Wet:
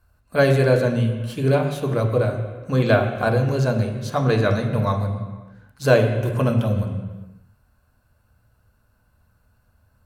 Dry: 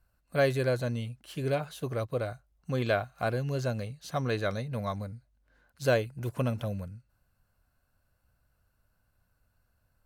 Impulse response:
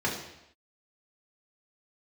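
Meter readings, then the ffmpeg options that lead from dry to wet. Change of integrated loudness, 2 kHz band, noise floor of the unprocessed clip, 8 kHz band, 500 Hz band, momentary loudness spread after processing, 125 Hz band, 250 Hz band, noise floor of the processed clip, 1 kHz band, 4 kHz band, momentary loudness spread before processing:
+11.0 dB, +9.5 dB, -74 dBFS, +7.0 dB, +10.5 dB, 11 LU, +12.5 dB, +12.0 dB, -63 dBFS, +10.0 dB, +7.5 dB, 11 LU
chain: -filter_complex "[0:a]asplit=2[s0][s1];[1:a]atrim=start_sample=2205,afade=t=out:st=0.38:d=0.01,atrim=end_sample=17199,asetrate=23814,aresample=44100[s2];[s1][s2]afir=irnorm=-1:irlink=0,volume=0.237[s3];[s0][s3]amix=inputs=2:normalize=0,volume=1.78"

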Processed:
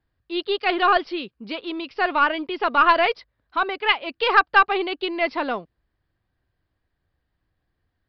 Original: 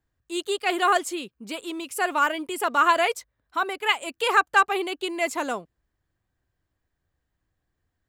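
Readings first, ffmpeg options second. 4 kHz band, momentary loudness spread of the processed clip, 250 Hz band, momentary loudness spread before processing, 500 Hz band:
+3.0 dB, 14 LU, +3.0 dB, 13 LU, +3.0 dB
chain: -af "aeval=exprs='0.501*(cos(1*acos(clip(val(0)/0.501,-1,1)))-cos(1*PI/2))+0.126*(cos(2*acos(clip(val(0)/0.501,-1,1)))-cos(2*PI/2))+0.1*(cos(4*acos(clip(val(0)/0.501,-1,1)))-cos(4*PI/2))+0.0282*(cos(6*acos(clip(val(0)/0.501,-1,1)))-cos(6*PI/2))+0.00562*(cos(8*acos(clip(val(0)/0.501,-1,1)))-cos(8*PI/2))':c=same,aresample=11025,aresample=44100,volume=1.41"

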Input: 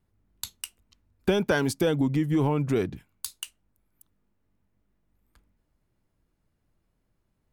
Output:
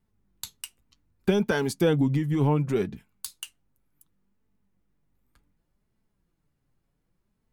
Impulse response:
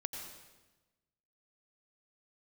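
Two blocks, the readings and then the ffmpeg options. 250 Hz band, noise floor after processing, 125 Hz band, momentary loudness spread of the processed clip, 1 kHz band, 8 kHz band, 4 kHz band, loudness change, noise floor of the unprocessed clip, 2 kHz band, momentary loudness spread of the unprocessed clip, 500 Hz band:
+0.5 dB, -76 dBFS, +2.5 dB, 19 LU, 0.0 dB, -1.5 dB, -1.5 dB, +1.5 dB, -75 dBFS, -1.5 dB, 16 LU, +0.5 dB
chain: -af "equalizer=f=170:t=o:w=0.77:g=2.5,bandreject=f=630:w=16,flanger=delay=4.5:depth=3.1:regen=53:speed=0.67:shape=sinusoidal,volume=1.33"

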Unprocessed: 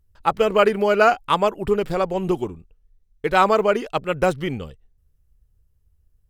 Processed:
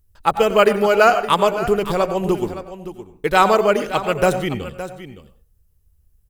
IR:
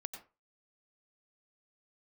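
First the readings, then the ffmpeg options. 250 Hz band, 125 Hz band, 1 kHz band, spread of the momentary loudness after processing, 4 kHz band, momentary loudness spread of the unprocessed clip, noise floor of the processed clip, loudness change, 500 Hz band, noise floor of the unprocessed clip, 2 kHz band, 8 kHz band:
+2.5 dB, +2.5 dB, +3.0 dB, 18 LU, +4.5 dB, 12 LU, -59 dBFS, +2.5 dB, +3.0 dB, -64 dBFS, +3.0 dB, +8.0 dB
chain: -filter_complex "[0:a]highshelf=f=6800:g=10,aecho=1:1:566:0.224,asplit=2[s0][s1];[1:a]atrim=start_sample=2205[s2];[s1][s2]afir=irnorm=-1:irlink=0,volume=1.68[s3];[s0][s3]amix=inputs=2:normalize=0,volume=0.596"

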